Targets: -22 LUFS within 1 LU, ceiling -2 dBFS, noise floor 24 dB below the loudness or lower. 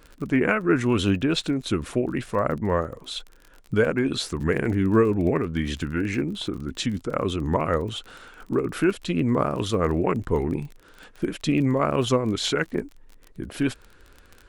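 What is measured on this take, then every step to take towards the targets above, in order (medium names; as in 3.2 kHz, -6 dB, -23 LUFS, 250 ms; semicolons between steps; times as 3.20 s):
tick rate 28 per s; loudness -25.0 LUFS; peak level -6.5 dBFS; loudness target -22.0 LUFS
-> de-click; trim +3 dB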